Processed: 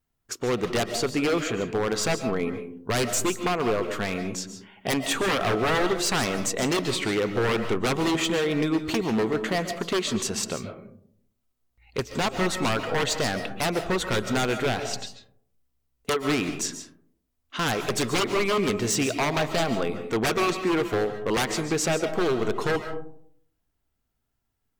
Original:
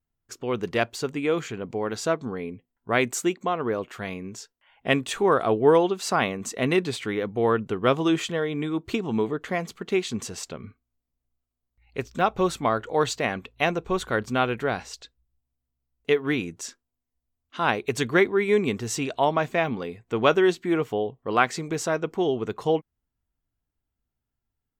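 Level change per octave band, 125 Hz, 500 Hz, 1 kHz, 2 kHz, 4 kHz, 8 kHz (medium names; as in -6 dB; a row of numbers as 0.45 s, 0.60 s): +1.5 dB, -2.0 dB, -2.0 dB, 0.0 dB, +5.0 dB, +6.0 dB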